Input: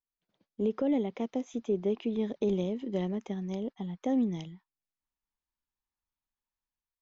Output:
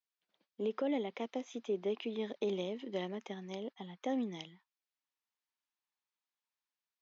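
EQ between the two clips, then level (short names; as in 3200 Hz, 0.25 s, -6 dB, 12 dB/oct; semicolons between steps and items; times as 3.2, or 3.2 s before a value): HPF 190 Hz; air absorption 170 m; tilt +3.5 dB/oct; 0.0 dB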